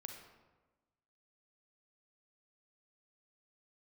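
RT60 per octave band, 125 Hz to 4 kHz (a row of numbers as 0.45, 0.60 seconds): 1.4, 1.4, 1.3, 1.2, 0.95, 0.70 seconds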